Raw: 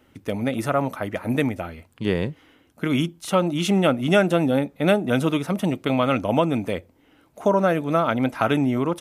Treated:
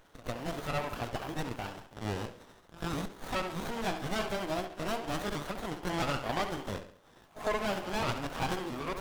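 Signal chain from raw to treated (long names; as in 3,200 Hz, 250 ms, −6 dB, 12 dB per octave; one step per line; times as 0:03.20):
pitch shifter swept by a sawtooth +5 semitones, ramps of 669 ms
first difference
in parallel at −1 dB: downward compressor, threshold −49 dBFS, peak gain reduction 19 dB
on the sum: echo ahead of the sound 102 ms −20 dB
mid-hump overdrive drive 19 dB, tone 2,200 Hz, clips at −14.5 dBFS
on a send: delay with a low-pass on its return 69 ms, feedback 44%, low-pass 2,600 Hz, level −8.5 dB
on the sum: windowed peak hold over 17 samples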